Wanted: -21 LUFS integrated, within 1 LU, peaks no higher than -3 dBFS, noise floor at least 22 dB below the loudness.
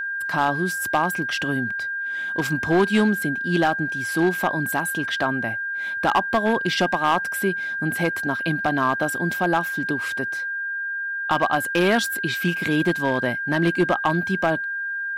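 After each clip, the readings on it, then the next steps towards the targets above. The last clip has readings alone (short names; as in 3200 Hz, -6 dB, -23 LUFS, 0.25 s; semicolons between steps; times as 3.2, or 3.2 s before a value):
clipped 0.8%; flat tops at -12.0 dBFS; steady tone 1600 Hz; tone level -25 dBFS; loudness -22.5 LUFS; peak -12.0 dBFS; loudness target -21.0 LUFS
-> clip repair -12 dBFS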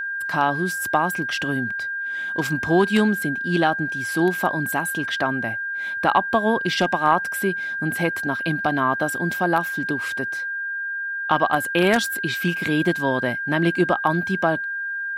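clipped 0.0%; steady tone 1600 Hz; tone level -25 dBFS
-> notch 1600 Hz, Q 30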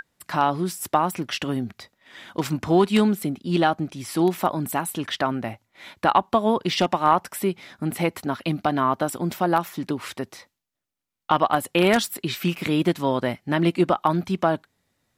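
steady tone none; loudness -23.5 LUFS; peak -3.5 dBFS; loudness target -21.0 LUFS
-> gain +2.5 dB; limiter -3 dBFS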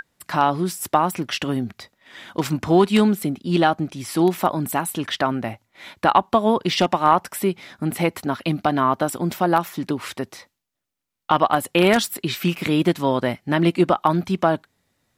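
loudness -21.0 LUFS; peak -3.0 dBFS; noise floor -77 dBFS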